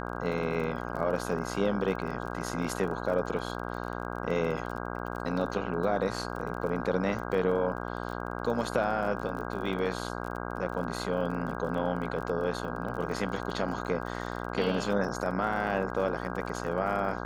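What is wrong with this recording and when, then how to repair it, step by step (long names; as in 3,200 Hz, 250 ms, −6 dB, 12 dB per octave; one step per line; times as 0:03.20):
mains buzz 60 Hz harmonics 27 −36 dBFS
surface crackle 31 per second −37 dBFS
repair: click removal
hum removal 60 Hz, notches 27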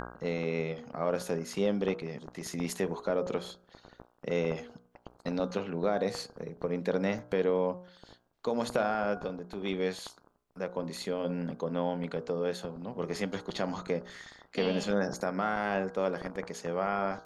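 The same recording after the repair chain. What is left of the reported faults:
none of them is left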